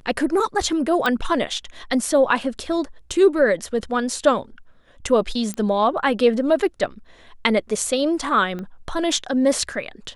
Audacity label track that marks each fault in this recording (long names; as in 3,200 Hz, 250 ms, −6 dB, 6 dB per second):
1.060000	1.060000	click −9 dBFS
5.540000	5.540000	click −15 dBFS
8.590000	8.590000	click −20 dBFS